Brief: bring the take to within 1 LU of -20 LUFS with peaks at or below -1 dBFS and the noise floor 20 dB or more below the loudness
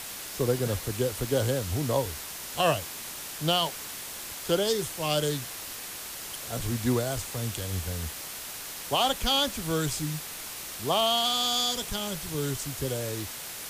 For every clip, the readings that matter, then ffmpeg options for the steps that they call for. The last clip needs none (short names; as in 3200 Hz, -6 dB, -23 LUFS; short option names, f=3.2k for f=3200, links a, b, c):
noise floor -39 dBFS; noise floor target -49 dBFS; loudness -29.0 LUFS; peak -13.0 dBFS; loudness target -20.0 LUFS
-> -af "afftdn=nr=10:nf=-39"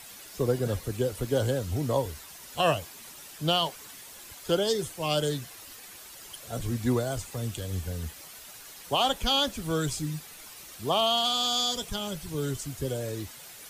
noise floor -47 dBFS; noise floor target -49 dBFS
-> -af "afftdn=nr=6:nf=-47"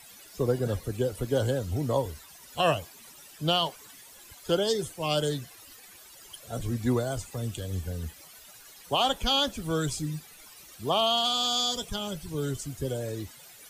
noise floor -51 dBFS; loudness -29.0 LUFS; peak -13.5 dBFS; loudness target -20.0 LUFS
-> -af "volume=9dB"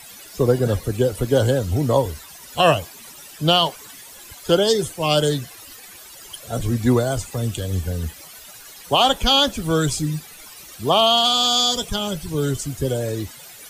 loudness -20.0 LUFS; peak -4.5 dBFS; noise floor -42 dBFS